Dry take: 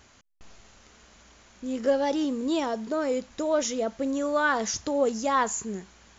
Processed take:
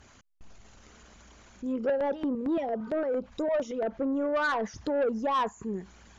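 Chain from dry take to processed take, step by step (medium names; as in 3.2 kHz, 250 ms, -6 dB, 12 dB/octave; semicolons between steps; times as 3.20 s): resonances exaggerated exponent 1.5; low-pass that closes with the level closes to 1.9 kHz, closed at -25 dBFS; 2.58–2.87 s: spectral replace 820–1900 Hz; 1.78–3.83 s: LFO notch square 4.4 Hz 330–1800 Hz; saturation -23 dBFS, distortion -14 dB; trim +1 dB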